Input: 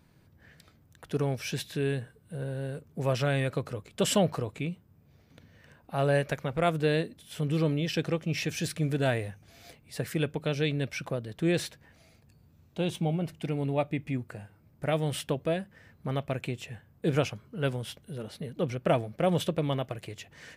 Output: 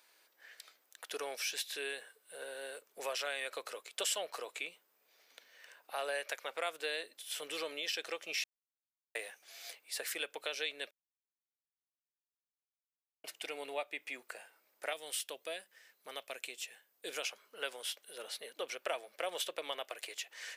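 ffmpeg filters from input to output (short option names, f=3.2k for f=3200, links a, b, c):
-filter_complex "[0:a]asettb=1/sr,asplit=3[a][b][c];[a]atrim=end=14.934[d];[b]atrim=start=14.93:end=17.24,asetpts=PTS-STARTPTS,afade=t=in:d=0.004:c=qsin,afade=t=out:st=2.306:d=0.004:c=qsin,equalizer=f=1k:w=0.33:g=-8.5[e];[c]atrim=start=17.236[f];[d][e]acrossfade=d=0.004:c1=hsin:c2=qsin[g];[g][f]acrossfade=d=0.004:c1=qsin:c2=hsin,asplit=5[h][i][j][k][l];[h]atrim=end=8.44,asetpts=PTS-STARTPTS,afade=t=out:st=8.436:d=0.004:c=hsin[m];[i]atrim=start=8.44:end=9.15,asetpts=PTS-STARTPTS,volume=0[n];[j]atrim=start=9.15:end=10.91,asetpts=PTS-STARTPTS,afade=t=in:d=0.004:c=hsin,afade=t=out:st=1.756:d=0.004:c=hsin[o];[k]atrim=start=10.91:end=13.24,asetpts=PTS-STARTPTS,volume=0[p];[l]atrim=start=13.24,asetpts=PTS-STARTPTS,afade=t=in:d=0.004:c=hsin[q];[m][n][o][p][q]concat=n=5:v=0:a=1,highpass=f=440:w=0.5412,highpass=f=440:w=1.3066,tiltshelf=f=1.3k:g=-7,acompressor=threshold=-37dB:ratio=2.5"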